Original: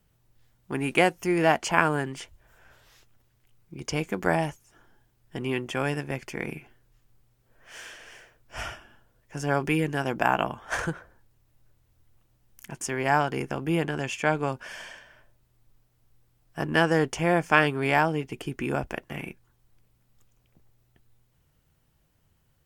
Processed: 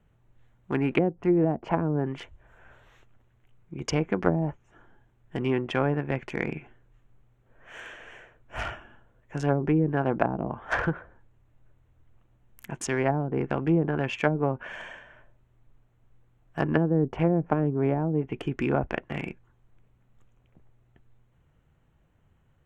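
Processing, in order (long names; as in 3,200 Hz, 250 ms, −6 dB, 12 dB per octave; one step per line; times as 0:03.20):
adaptive Wiener filter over 9 samples
treble cut that deepens with the level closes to 340 Hz, closed at −19.5 dBFS
level +3.5 dB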